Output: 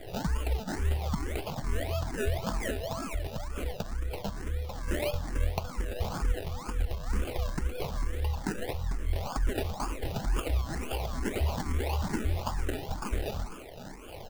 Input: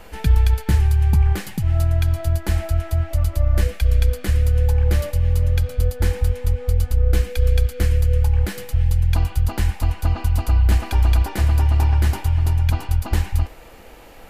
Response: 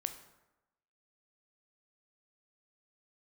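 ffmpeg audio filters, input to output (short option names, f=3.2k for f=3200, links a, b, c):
-filter_complex "[0:a]equalizer=f=1.4k:w=0.61:g=13.5,aecho=1:1:4.8:0.74,alimiter=limit=-12.5dB:level=0:latency=1:release=76,acrossover=split=730[a][b];[a]aeval=exprs='val(0)*(1-0.7/2+0.7/2*cos(2*PI*3.5*n/s))':c=same[c];[b]aeval=exprs='val(0)*(1-0.7/2-0.7/2*cos(2*PI*3.5*n/s))':c=same[d];[c][d]amix=inputs=2:normalize=0,asettb=1/sr,asplit=3[e][f][g];[e]atrim=end=2.714[h];[f]atrim=start=2.71:end=4.88,asetpts=PTS-STARTPTS,afade=t=in:d=0.004:c=qsin,afade=t=out:st=2.166:d=0.004:c=qsin,acompressor=threshold=-23dB:ratio=6[i];[g]atrim=start=4.876[j];[h][i]acrossfade=d=0.004:c1=hsin:c2=qsin[k];[k][j]acrossfade=d=0.004:c1=qsin:c2=hsin,highshelf=f=3.4k:g=10.5,acrusher=samples=32:mix=1:aa=0.000001:lfo=1:lforange=19.2:lforate=1.9,asplit=2[l][m];[m]afreqshift=2.2[n];[l][n]amix=inputs=2:normalize=1,volume=-4dB"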